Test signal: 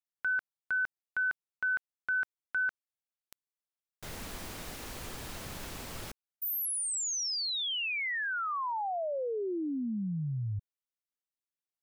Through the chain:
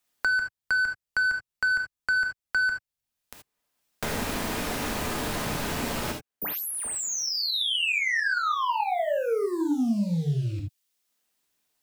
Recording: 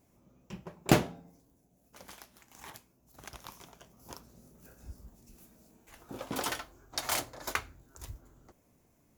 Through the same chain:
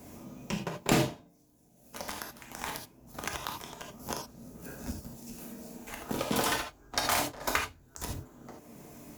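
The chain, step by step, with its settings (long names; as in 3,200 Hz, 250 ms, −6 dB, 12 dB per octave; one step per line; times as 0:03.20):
leveller curve on the samples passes 2
reverb whose tail is shaped and stops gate 100 ms flat, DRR 1.5 dB
multiband upward and downward compressor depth 70%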